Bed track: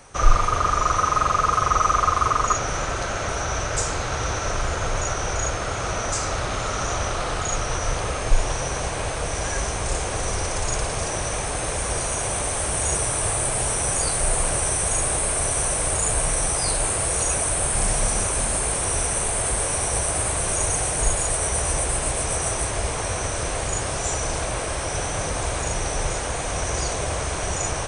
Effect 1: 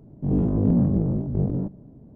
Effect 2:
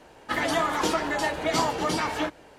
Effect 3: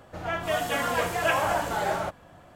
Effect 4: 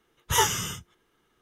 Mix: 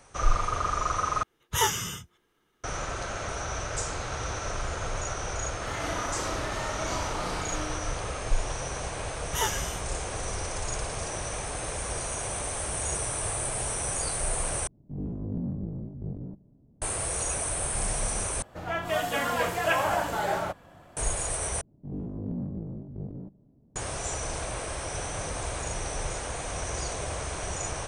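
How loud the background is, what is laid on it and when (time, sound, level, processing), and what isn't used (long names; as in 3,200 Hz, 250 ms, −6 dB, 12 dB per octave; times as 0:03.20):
bed track −7.5 dB
0:01.23: overwrite with 4 −2.5 dB
0:05.33: mix in 2 −15 dB + flutter between parallel walls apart 5.6 metres, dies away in 1.5 s
0:09.03: mix in 4 −6.5 dB
0:14.67: overwrite with 1 −15 dB + low-shelf EQ 160 Hz +5 dB
0:18.42: overwrite with 3 −1 dB
0:21.61: overwrite with 1 −14 dB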